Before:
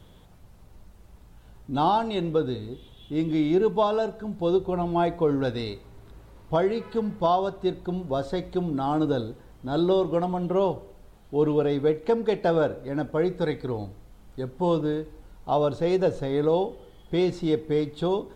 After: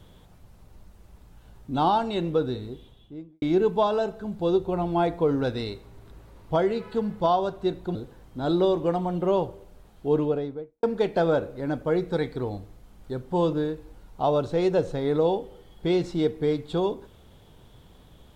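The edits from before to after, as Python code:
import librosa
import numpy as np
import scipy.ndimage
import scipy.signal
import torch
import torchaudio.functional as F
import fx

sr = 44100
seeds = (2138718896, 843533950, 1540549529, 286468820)

y = fx.studio_fade_out(x, sr, start_s=2.66, length_s=0.76)
y = fx.studio_fade_out(y, sr, start_s=11.34, length_s=0.77)
y = fx.edit(y, sr, fx.cut(start_s=7.95, length_s=1.28), tone=tone)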